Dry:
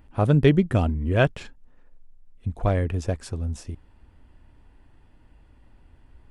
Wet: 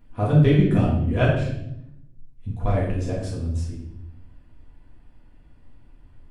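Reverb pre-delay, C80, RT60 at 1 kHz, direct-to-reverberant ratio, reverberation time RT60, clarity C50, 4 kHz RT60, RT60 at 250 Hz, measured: 4 ms, 5.5 dB, 0.60 s, −6.0 dB, 0.75 s, 2.5 dB, 0.65 s, 1.3 s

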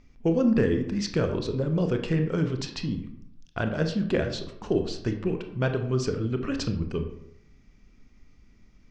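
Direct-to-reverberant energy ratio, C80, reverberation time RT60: 5.5 dB, 11.5 dB, 0.70 s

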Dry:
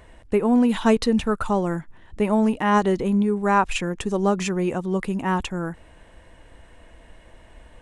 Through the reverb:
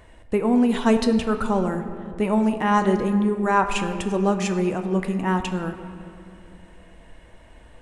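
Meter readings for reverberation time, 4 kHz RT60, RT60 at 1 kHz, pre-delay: 2.6 s, 1.3 s, 2.4 s, 9 ms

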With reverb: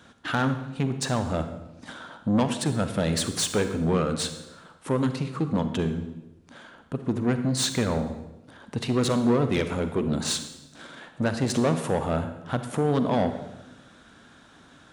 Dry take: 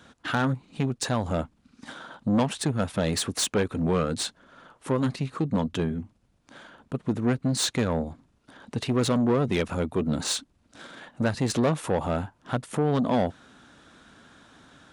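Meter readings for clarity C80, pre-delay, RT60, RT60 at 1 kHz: 11.0 dB, 38 ms, 1.0 s, 0.95 s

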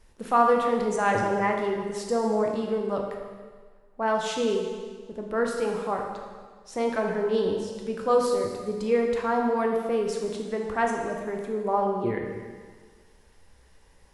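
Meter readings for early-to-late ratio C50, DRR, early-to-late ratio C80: 3.5 dB, 1.0 dB, 5.0 dB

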